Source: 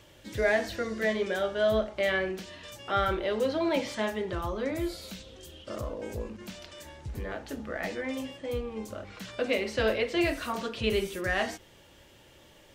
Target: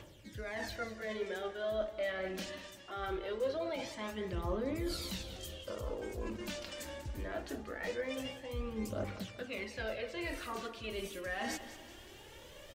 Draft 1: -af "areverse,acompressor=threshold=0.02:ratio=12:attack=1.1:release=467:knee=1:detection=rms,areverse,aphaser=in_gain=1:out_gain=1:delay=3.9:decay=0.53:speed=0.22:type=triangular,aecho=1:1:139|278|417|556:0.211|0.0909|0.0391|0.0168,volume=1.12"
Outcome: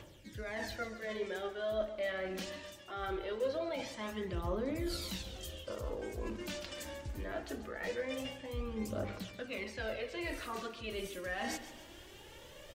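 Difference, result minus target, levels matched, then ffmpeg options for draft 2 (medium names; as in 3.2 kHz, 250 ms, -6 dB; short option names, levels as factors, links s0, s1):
echo 53 ms early
-af "areverse,acompressor=threshold=0.02:ratio=12:attack=1.1:release=467:knee=1:detection=rms,areverse,aphaser=in_gain=1:out_gain=1:delay=3.9:decay=0.53:speed=0.22:type=triangular,aecho=1:1:192|384|576|768:0.211|0.0909|0.0391|0.0168,volume=1.12"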